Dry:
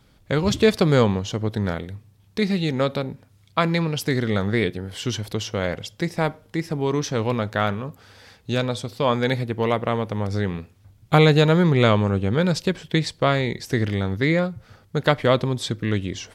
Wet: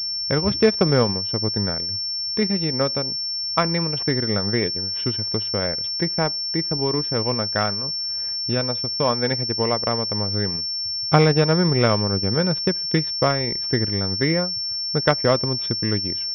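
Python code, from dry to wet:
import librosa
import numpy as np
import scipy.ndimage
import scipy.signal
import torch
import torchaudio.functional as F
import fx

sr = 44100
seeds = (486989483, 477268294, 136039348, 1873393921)

y = fx.transient(x, sr, attack_db=3, sustain_db=-8)
y = fx.pwm(y, sr, carrier_hz=5400.0)
y = y * librosa.db_to_amplitude(-1.5)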